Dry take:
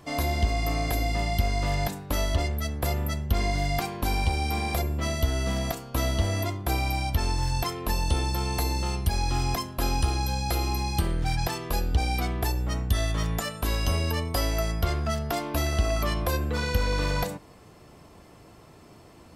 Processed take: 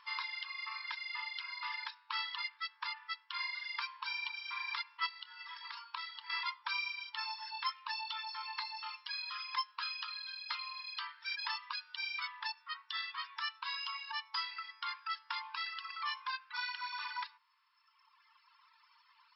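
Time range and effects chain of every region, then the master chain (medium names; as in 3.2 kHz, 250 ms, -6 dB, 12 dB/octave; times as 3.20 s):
5.06–6.30 s: compression, threshold -31 dBFS + doubling 27 ms -12.5 dB
whole clip: FFT band-pass 880–5500 Hz; reverb removal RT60 2 s; gain riding 2 s; trim -2.5 dB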